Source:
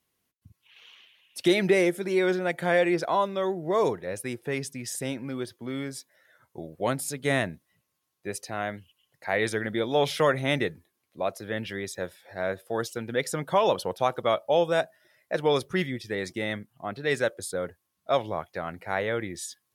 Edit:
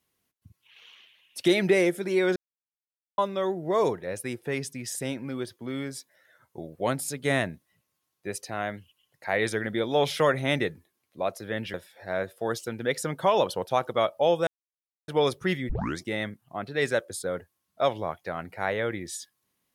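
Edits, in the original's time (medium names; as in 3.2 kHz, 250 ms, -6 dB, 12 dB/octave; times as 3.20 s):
2.36–3.18 s: mute
11.74–12.03 s: delete
14.76–15.37 s: mute
15.98 s: tape start 0.30 s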